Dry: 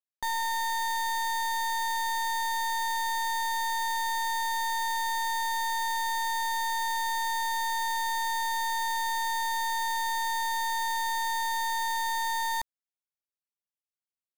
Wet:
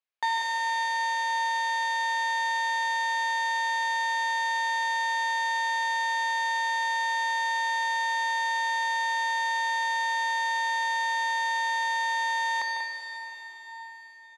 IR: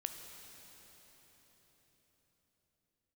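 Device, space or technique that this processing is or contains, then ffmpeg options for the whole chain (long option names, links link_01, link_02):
station announcement: -filter_complex "[0:a]highpass=490,lowpass=3900,equalizer=frequency=2400:width_type=o:width=0.49:gain=4.5,aecho=1:1:148.7|189.5:0.316|0.398[link_01];[1:a]atrim=start_sample=2205[link_02];[link_01][link_02]afir=irnorm=-1:irlink=0,volume=7.5dB"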